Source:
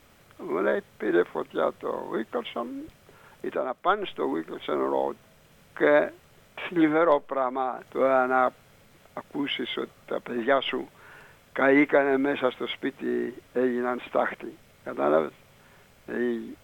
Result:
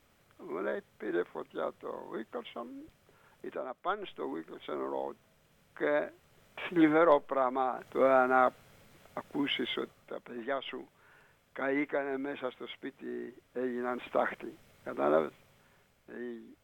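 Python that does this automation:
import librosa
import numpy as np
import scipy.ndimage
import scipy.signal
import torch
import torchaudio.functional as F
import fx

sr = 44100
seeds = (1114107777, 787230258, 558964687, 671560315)

y = fx.gain(x, sr, db=fx.line((6.06, -10.0), (6.83, -3.0), (9.71, -3.0), (10.18, -12.0), (13.49, -12.0), (14.02, -5.0), (15.25, -5.0), (16.11, -14.0)))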